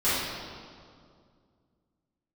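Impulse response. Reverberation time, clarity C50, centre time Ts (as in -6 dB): 2.2 s, -2.5 dB, 121 ms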